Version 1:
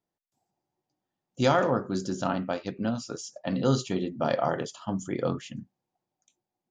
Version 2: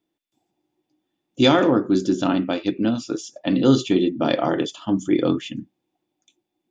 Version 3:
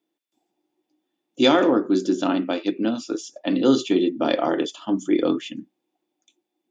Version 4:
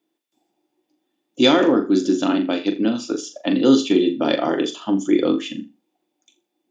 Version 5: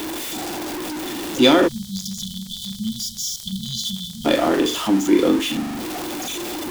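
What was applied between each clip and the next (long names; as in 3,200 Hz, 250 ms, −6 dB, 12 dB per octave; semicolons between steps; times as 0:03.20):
parametric band 2,600 Hz +8.5 dB 0.87 octaves; hollow resonant body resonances 310/3,500 Hz, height 16 dB, ringing for 45 ms; level +2 dB
Chebyshev high-pass filter 290 Hz, order 2
dynamic equaliser 860 Hz, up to −4 dB, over −29 dBFS, Q 0.71; on a send: flutter between parallel walls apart 7 metres, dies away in 0.27 s; on the sum: level +3.5 dB
converter with a step at zero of −22 dBFS; time-frequency box erased 0:01.68–0:04.25, 230–3,000 Hz; surface crackle 46 per second −29 dBFS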